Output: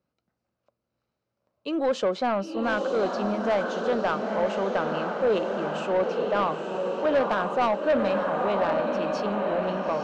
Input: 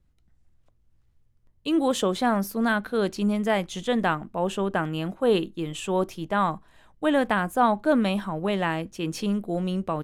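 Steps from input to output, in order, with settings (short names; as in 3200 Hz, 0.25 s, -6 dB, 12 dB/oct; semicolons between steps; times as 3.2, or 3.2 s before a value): speaker cabinet 260–5200 Hz, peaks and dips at 320 Hz -4 dB, 570 Hz +7 dB, 1300 Hz +3 dB, 1900 Hz -8 dB, 3400 Hz -9 dB; diffused feedback echo 0.936 s, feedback 62%, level -5 dB; soft clip -17 dBFS, distortion -13 dB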